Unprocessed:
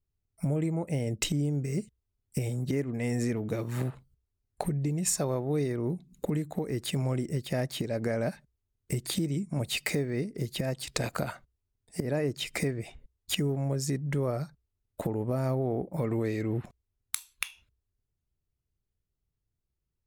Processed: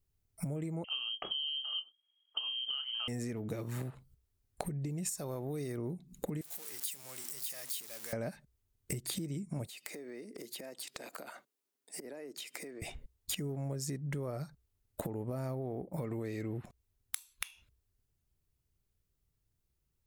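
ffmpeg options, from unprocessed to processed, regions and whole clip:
ffmpeg -i in.wav -filter_complex "[0:a]asettb=1/sr,asplit=3[link_01][link_02][link_03];[link_01]atrim=end=0.844[link_04];[link_02]atrim=start=0.84:end=3.08,asetpts=PTS-STARTPTS,afade=type=in:duration=0.004:curve=qsin,afade=type=out:start_time=2.236:duration=0.004:curve=qsin,asplit=2[link_05][link_06];[link_06]adelay=27,volume=-11dB[link_07];[link_05][link_07]amix=inputs=2:normalize=0,atrim=end_sample=98784,lowpass=frequency=2800:width_type=q:width=0.5098,lowpass=frequency=2800:width_type=q:width=0.6013,lowpass=frequency=2800:width_type=q:width=0.9,lowpass=frequency=2800:width_type=q:width=2.563,afreqshift=-3300[link_08];[link_03]atrim=start=3.076[link_09];[link_04][link_08]acrossfade=duration=0.004:curve1=hsin:curve2=qsin[link_10];[link_10][link_09]acrossfade=duration=0.004:curve1=qsin:curve2=hsin,asettb=1/sr,asplit=3[link_11][link_12][link_13];[link_11]atrim=end=5.094[link_14];[link_12]atrim=start=5.09:end=5.78,asetpts=PTS-STARTPTS,afade=type=in:duration=0.004:curve=qsin,afade=type=out:start_time=0.686:duration=0.004:curve=qsin,highshelf=frequency=6600:gain=11,acompressor=threshold=-29dB:ratio=2.5:attack=3.2:release=140:knee=1:detection=peak[link_15];[link_13]atrim=start=5.776[link_16];[link_14][link_15]acrossfade=duration=0.004:curve1=hsin:curve2=qsin[link_17];[link_17][link_16]acrossfade=duration=0.004:curve1=qsin:curve2=hsin,asettb=1/sr,asplit=3[link_18][link_19][link_20];[link_18]atrim=end=6.414[link_21];[link_19]atrim=start=6.41:end=8.13,asetpts=PTS-STARTPTS,afade=type=in:duration=0.004:curve=qsin,afade=type=out:start_time=1.716:duration=0.004:curve=qsin,aeval=exprs='val(0)+0.5*0.0211*sgn(val(0))':channel_layout=same,aderivative,bandreject=frequency=50:width_type=h:width=6,bandreject=frequency=100:width_type=h:width=6,bandreject=frequency=150:width_type=h:width=6,bandreject=frequency=200:width_type=h:width=6,bandreject=frequency=250:width_type=h:width=6,bandreject=frequency=300:width_type=h:width=6,bandreject=frequency=350:width_type=h:width=6[link_22];[link_20]atrim=start=8.126[link_23];[link_21][link_22]acrossfade=duration=0.004:curve1=hsin:curve2=qsin[link_24];[link_24][link_23]acrossfade=duration=0.004:curve1=qsin:curve2=hsin,asettb=1/sr,asplit=3[link_25][link_26][link_27];[link_25]atrim=end=9.674[link_28];[link_26]atrim=start=9.67:end=12.82,asetpts=PTS-STARTPTS,afade=type=in:duration=0.004:curve=qsin,afade=type=out:start_time=3.146:duration=0.004:curve=qsin,highpass=frequency=260:width=0.5412,highpass=frequency=260:width=1.3066,acompressor=threshold=-45dB:ratio=12:attack=3.2:release=140:knee=1:detection=peak[link_29];[link_27]atrim=start=12.816[link_30];[link_28][link_29]acrossfade=duration=0.004:curve1=hsin:curve2=qsin[link_31];[link_31][link_30]acrossfade=duration=0.004:curve1=qsin:curve2=hsin,highshelf=frequency=7500:gain=5.5,acompressor=threshold=-39dB:ratio=6,volume=3dB" out.wav

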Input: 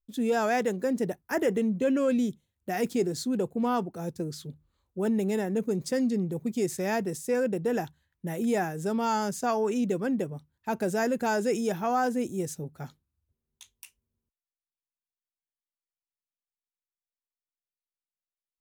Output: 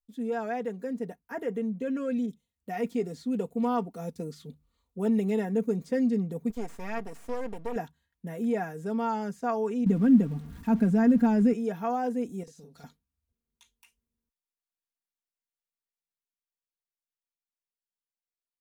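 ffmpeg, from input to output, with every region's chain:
ffmpeg -i in.wav -filter_complex "[0:a]asettb=1/sr,asplit=3[link_01][link_02][link_03];[link_01]atrim=end=2.264[link_04];[link_02]atrim=start=2.26:end=5.45,asetpts=PTS-STARTPTS,afade=type=in:duration=0.004:curve=qsin,afade=type=out:start_time=3.186:duration=0.004:curve=qsin,bandreject=frequency=1600:width=9.1,adynamicequalizer=threshold=0.00447:dfrequency=2000:dqfactor=0.7:tfrequency=2000:tqfactor=0.7:attack=5:release=100:ratio=0.375:range=2.5:mode=boostabove:tftype=highshelf[link_05];[link_03]atrim=start=5.446[link_06];[link_04][link_05]acrossfade=duration=0.004:curve1=hsin:curve2=qsin[link_07];[link_07][link_06]acrossfade=duration=0.004:curve1=qsin:curve2=hsin,asettb=1/sr,asplit=3[link_08][link_09][link_10];[link_08]atrim=end=6.504[link_11];[link_09]atrim=start=6.5:end=7.76,asetpts=PTS-STARTPTS,afade=type=in:duration=0.004:curve=qsin,afade=type=out:start_time=1.256:duration=0.004:curve=qsin,equalizer=frequency=220:width=0.48:gain=-3.5,aeval=exprs='max(val(0),0)':channel_layout=same[link_12];[link_10]atrim=start=7.756[link_13];[link_11][link_12]acrossfade=duration=0.004:curve1=hsin:curve2=qsin[link_14];[link_14][link_13]acrossfade=duration=0.004:curve1=qsin:curve2=hsin,asettb=1/sr,asplit=3[link_15][link_16][link_17];[link_15]atrim=end=9.864[link_18];[link_16]atrim=start=9.86:end=11.53,asetpts=PTS-STARTPTS,afade=type=in:duration=0.004:curve=qsin,afade=type=out:start_time=1.666:duration=0.004:curve=qsin,aeval=exprs='val(0)+0.5*0.00944*sgn(val(0))':channel_layout=same,lowshelf=frequency=340:width_type=q:width=1.5:gain=9.5[link_19];[link_17]atrim=start=11.526[link_20];[link_18][link_19]acrossfade=duration=0.004:curve1=hsin:curve2=qsin[link_21];[link_21][link_20]acrossfade=duration=0.004:curve1=qsin:curve2=hsin,asettb=1/sr,asplit=3[link_22][link_23][link_24];[link_22]atrim=end=12.434[link_25];[link_23]atrim=start=12.43:end=12.84,asetpts=PTS-STARTPTS,afade=type=in:duration=0.004:curve=qsin,afade=type=out:start_time=0.406:duration=0.004:curve=qsin,equalizer=frequency=4700:width_type=o:width=1.5:gain=14.5,acompressor=threshold=-45dB:ratio=4:attack=3.2:release=140:knee=1:detection=peak,asplit=2[link_26][link_27];[link_27]adelay=46,volume=-2.5dB[link_28];[link_26][link_28]amix=inputs=2:normalize=0,atrim=end_sample=18081[link_29];[link_24]atrim=start=12.836[link_30];[link_25][link_29]acrossfade=duration=0.004:curve1=hsin:curve2=qsin[link_31];[link_31][link_30]acrossfade=duration=0.004:curve1=qsin:curve2=hsin,acrossover=split=2600[link_32][link_33];[link_33]acompressor=threshold=-52dB:ratio=4:attack=1:release=60[link_34];[link_32][link_34]amix=inputs=2:normalize=0,aecho=1:1:4.3:0.65,dynaudnorm=framelen=380:gausssize=17:maxgain=7dB,volume=-9dB" out.wav

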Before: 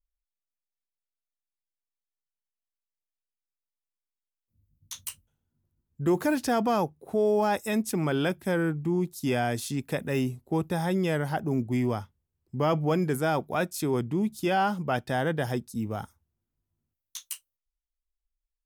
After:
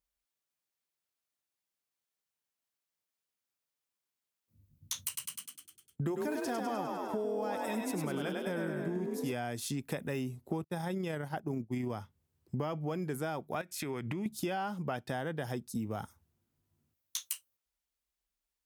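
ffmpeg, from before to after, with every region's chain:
ffmpeg -i in.wav -filter_complex "[0:a]asettb=1/sr,asplit=3[link_01][link_02][link_03];[link_01]atrim=end=5.074[link_04];[link_02]atrim=start=5.07:end=9.33,asetpts=PTS-STARTPTS,afade=type=in:duration=0.004:curve=qsin,afade=type=out:start_time=4.256:duration=0.004:curve=qsin,agate=range=-14dB:threshold=-49dB:ratio=16:release=100:detection=peak,asplit=9[link_05][link_06][link_07][link_08][link_09][link_10][link_11][link_12][link_13];[link_06]adelay=101,afreqshift=38,volume=-3.5dB[link_14];[link_07]adelay=202,afreqshift=76,volume=-8.1dB[link_15];[link_08]adelay=303,afreqshift=114,volume=-12.7dB[link_16];[link_09]adelay=404,afreqshift=152,volume=-17.2dB[link_17];[link_10]adelay=505,afreqshift=190,volume=-21.8dB[link_18];[link_11]adelay=606,afreqshift=228,volume=-26.4dB[link_19];[link_12]adelay=707,afreqshift=266,volume=-31dB[link_20];[link_13]adelay=808,afreqshift=304,volume=-35.6dB[link_21];[link_05][link_14][link_15][link_16][link_17][link_18][link_19][link_20][link_21]amix=inputs=9:normalize=0,atrim=end_sample=187866[link_22];[link_03]atrim=start=9.326[link_23];[link_04][link_22]acrossfade=duration=0.004:curve1=hsin:curve2=qsin[link_24];[link_24][link_23]acrossfade=duration=0.004:curve1=qsin:curve2=hsin,asettb=1/sr,asplit=3[link_25][link_26][link_27];[link_25]atrim=end=10.644[link_28];[link_26]atrim=start=10.64:end=11.9,asetpts=PTS-STARTPTS,afade=type=in:duration=0.004:curve=qsin,afade=type=out:start_time=1.256:duration=0.004:curve=qsin,agate=range=-33dB:threshold=-28dB:ratio=3:release=100:detection=peak,tremolo=f=30:d=0.261[link_29];[link_27]atrim=start=11.896[link_30];[link_28][link_29]acrossfade=duration=0.004:curve1=hsin:curve2=qsin[link_31];[link_31][link_30]acrossfade=duration=0.004:curve1=qsin:curve2=hsin,asettb=1/sr,asplit=3[link_32][link_33][link_34];[link_32]atrim=end=13.614[link_35];[link_33]atrim=start=13.61:end=14.26,asetpts=PTS-STARTPTS,afade=type=in:duration=0.004:curve=qsin,afade=type=out:start_time=0.646:duration=0.004:curve=qsin,equalizer=frequency=2100:width_type=o:width=1.1:gain=13.5,acompressor=threshold=-35dB:ratio=10:attack=3.2:release=140:knee=1:detection=peak[link_36];[link_34]atrim=start=14.256[link_37];[link_35][link_36]acrossfade=duration=0.004:curve1=hsin:curve2=qsin[link_38];[link_38][link_37]acrossfade=duration=0.004:curve1=qsin:curve2=hsin,highpass=85,acompressor=threshold=-39dB:ratio=8,volume=6dB" out.wav

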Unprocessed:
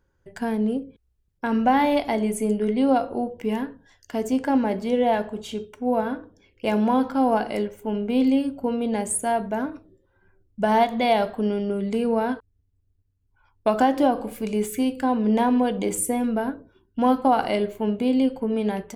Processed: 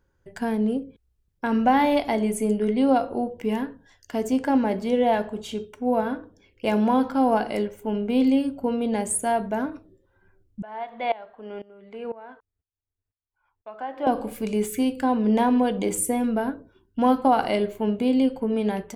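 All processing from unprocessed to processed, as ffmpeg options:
ffmpeg -i in.wav -filter_complex "[0:a]asettb=1/sr,asplit=3[link_01][link_02][link_03];[link_01]atrim=end=10.624[link_04];[link_02]atrim=start=10.62:end=14.07,asetpts=PTS-STARTPTS,afade=type=in:duration=0.004:curve=qsin,afade=type=out:start_time=3.446:duration=0.004:curve=qsin,acrossover=split=480 3000:gain=0.2 1 0.0631[link_05][link_06][link_07];[link_05][link_06][link_07]amix=inputs=3:normalize=0,aeval=exprs='val(0)*pow(10,-20*if(lt(mod(-2*n/s,1),2*abs(-2)/1000),1-mod(-2*n/s,1)/(2*abs(-2)/1000),(mod(-2*n/s,1)-2*abs(-2)/1000)/(1-2*abs(-2)/1000))/20)':channel_layout=same[link_08];[link_03]atrim=start=14.066[link_09];[link_04][link_08]acrossfade=duration=0.004:curve1=hsin:curve2=qsin[link_10];[link_10][link_09]acrossfade=duration=0.004:curve1=qsin:curve2=hsin" out.wav

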